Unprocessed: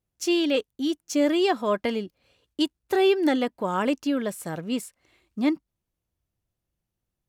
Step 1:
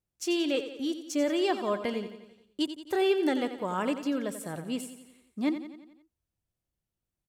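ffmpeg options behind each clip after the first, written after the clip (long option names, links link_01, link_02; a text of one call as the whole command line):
ffmpeg -i in.wav -filter_complex "[0:a]equalizer=frequency=8400:width=4:gain=4,asplit=2[link_01][link_02];[link_02]aecho=0:1:88|176|264|352|440|528:0.282|0.155|0.0853|0.0469|0.0258|0.0142[link_03];[link_01][link_03]amix=inputs=2:normalize=0,volume=-5.5dB" out.wav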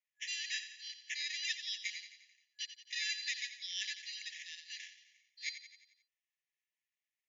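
ffmpeg -i in.wav -af "acrusher=samples=10:mix=1:aa=0.000001,afftfilt=real='re*between(b*sr/4096,1700,7200)':imag='im*between(b*sr/4096,1700,7200)':win_size=4096:overlap=0.75,volume=1dB" out.wav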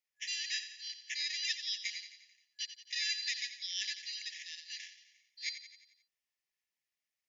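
ffmpeg -i in.wav -af "equalizer=frequency=5000:width=3.1:gain=6.5" out.wav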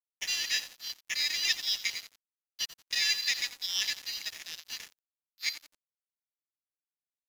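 ffmpeg -i in.wav -af "aeval=exprs='sgn(val(0))*max(abs(val(0))-0.00422,0)':channel_layout=same,volume=8.5dB" out.wav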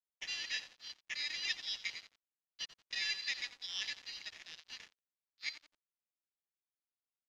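ffmpeg -i in.wav -af "lowpass=4300,volume=-6.5dB" out.wav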